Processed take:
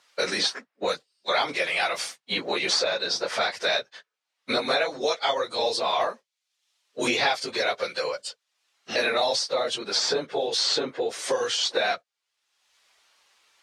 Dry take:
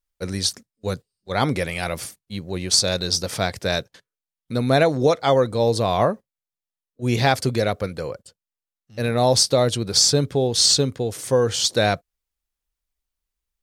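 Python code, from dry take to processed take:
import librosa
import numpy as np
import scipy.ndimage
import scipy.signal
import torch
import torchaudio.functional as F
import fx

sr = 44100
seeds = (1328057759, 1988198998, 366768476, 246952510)

y = fx.phase_scramble(x, sr, seeds[0], window_ms=50)
y = fx.bandpass_edges(y, sr, low_hz=660.0, high_hz=5100.0)
y = fx.band_squash(y, sr, depth_pct=100)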